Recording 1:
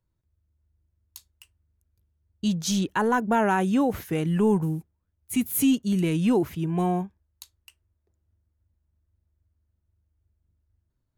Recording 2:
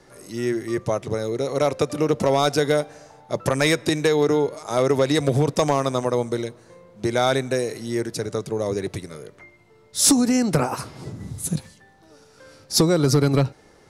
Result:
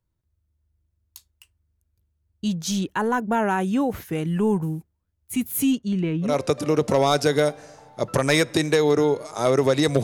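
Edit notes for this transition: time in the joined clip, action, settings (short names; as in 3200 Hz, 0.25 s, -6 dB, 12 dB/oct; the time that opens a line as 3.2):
recording 1
5.72–6.37 LPF 8900 Hz -> 1000 Hz
6.29 switch to recording 2 from 1.61 s, crossfade 0.16 s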